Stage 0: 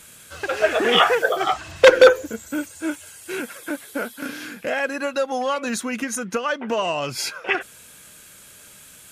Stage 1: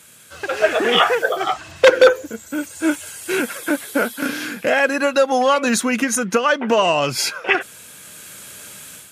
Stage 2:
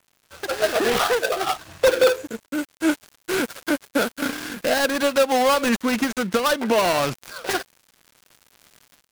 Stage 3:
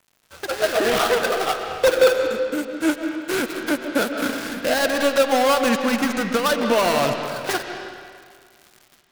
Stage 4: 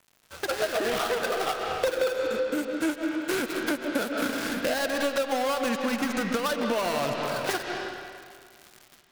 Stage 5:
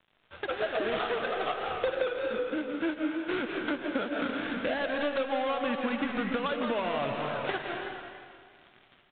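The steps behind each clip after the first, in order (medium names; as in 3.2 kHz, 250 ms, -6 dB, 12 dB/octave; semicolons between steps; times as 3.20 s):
high-pass 88 Hz; level rider gain up to 9.5 dB; trim -1 dB
dead-time distortion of 0.18 ms; loudness maximiser +6 dB; trim -7.5 dB
reverberation RT60 1.9 s, pre-delay 95 ms, DRR 5 dB
compression 5:1, threshold -24 dBFS, peak gain reduction 12.5 dB
delay 170 ms -10 dB; vibrato 3.2 Hz 61 cents; trim -3.5 dB; µ-law 64 kbps 8 kHz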